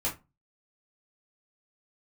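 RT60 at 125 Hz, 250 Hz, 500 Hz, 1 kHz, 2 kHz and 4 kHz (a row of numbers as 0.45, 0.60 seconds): 0.40, 0.30, 0.25, 0.25, 0.20, 0.15 seconds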